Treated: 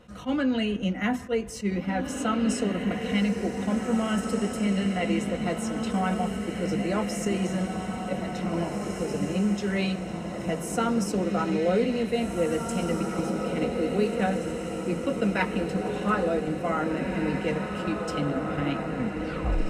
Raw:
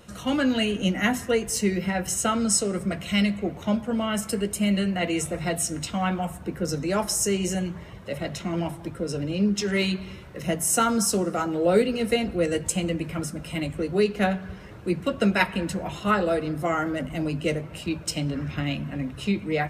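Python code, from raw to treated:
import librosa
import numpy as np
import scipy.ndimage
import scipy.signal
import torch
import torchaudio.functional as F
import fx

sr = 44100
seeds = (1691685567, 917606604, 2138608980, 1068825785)

p1 = fx.tape_stop_end(x, sr, length_s=0.76)
p2 = fx.lowpass(p1, sr, hz=2400.0, slope=6)
p3 = p2 + 0.33 * np.pad(p2, (int(4.0 * sr / 1000.0), 0))[:len(p2)]
p4 = fx.level_steps(p3, sr, step_db=14)
p5 = p3 + F.gain(torch.from_numpy(p4), 2.0).numpy()
p6 = fx.echo_diffused(p5, sr, ms=1955, feedback_pct=53, wet_db=-4.0)
p7 = fx.attack_slew(p6, sr, db_per_s=360.0)
y = F.gain(torch.from_numpy(p7), -7.5).numpy()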